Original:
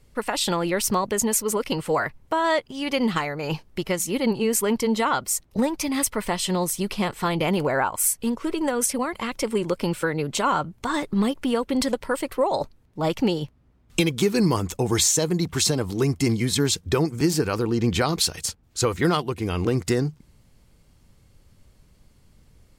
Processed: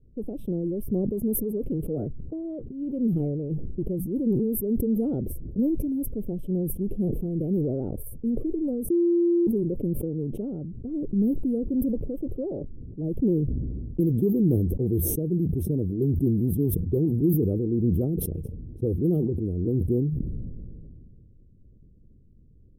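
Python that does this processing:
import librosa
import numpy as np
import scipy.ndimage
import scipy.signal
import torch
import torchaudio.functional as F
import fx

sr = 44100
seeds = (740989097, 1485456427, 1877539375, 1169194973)

y = fx.edit(x, sr, fx.bleep(start_s=8.9, length_s=0.57, hz=344.0, db=-15.5), tone=tone)
y = scipy.signal.sosfilt(scipy.signal.cheby2(4, 50, [960.0, 7600.0], 'bandstop', fs=sr, output='sos'), y)
y = fx.env_lowpass(y, sr, base_hz=2300.0, full_db=-19.5)
y = fx.sustainer(y, sr, db_per_s=23.0)
y = y * librosa.db_to_amplitude(-1.5)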